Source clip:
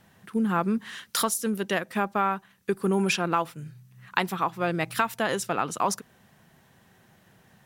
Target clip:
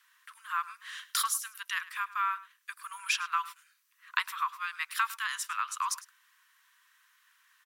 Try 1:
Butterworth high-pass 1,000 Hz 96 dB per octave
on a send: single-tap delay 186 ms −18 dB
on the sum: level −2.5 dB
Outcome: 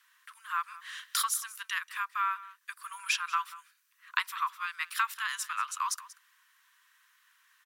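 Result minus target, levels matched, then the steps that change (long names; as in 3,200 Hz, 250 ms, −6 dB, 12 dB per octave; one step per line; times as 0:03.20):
echo 82 ms late
change: single-tap delay 104 ms −18 dB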